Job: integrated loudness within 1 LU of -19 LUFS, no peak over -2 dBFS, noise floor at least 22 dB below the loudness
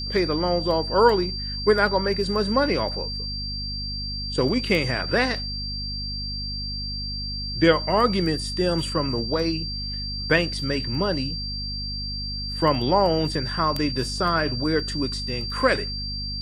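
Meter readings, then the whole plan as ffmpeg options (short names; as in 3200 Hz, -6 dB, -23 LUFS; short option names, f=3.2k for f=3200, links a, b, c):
hum 50 Hz; harmonics up to 250 Hz; hum level -31 dBFS; steady tone 4700 Hz; tone level -30 dBFS; loudness -24.0 LUFS; peak -4.0 dBFS; loudness target -19.0 LUFS
-> -af "bandreject=f=50:t=h:w=6,bandreject=f=100:t=h:w=6,bandreject=f=150:t=h:w=6,bandreject=f=200:t=h:w=6,bandreject=f=250:t=h:w=6"
-af "bandreject=f=4.7k:w=30"
-af "volume=5dB,alimiter=limit=-2dB:level=0:latency=1"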